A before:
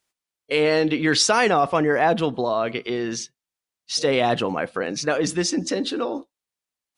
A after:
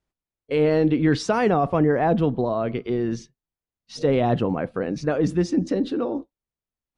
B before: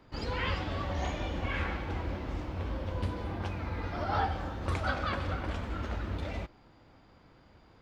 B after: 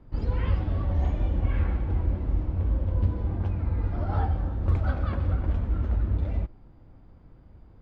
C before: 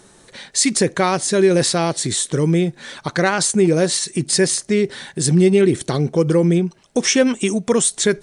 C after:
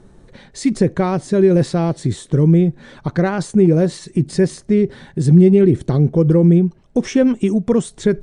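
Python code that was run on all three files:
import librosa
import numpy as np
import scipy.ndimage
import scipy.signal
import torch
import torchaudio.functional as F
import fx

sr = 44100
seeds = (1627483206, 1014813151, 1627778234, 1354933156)

y = fx.tilt_eq(x, sr, slope=-4.0)
y = y * 10.0 ** (-4.5 / 20.0)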